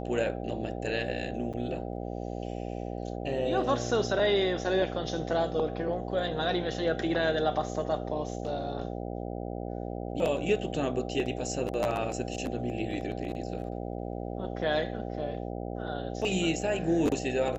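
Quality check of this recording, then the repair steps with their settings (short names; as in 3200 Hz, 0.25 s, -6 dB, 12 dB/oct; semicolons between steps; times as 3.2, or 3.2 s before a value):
buzz 60 Hz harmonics 13 -36 dBFS
1.53–1.54 gap 6.5 ms
8.47 gap 2.6 ms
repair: de-hum 60 Hz, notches 13; interpolate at 1.53, 6.5 ms; interpolate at 8.47, 2.6 ms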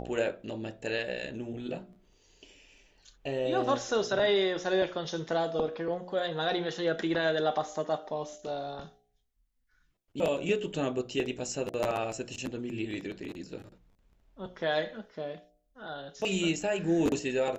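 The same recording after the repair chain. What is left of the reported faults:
none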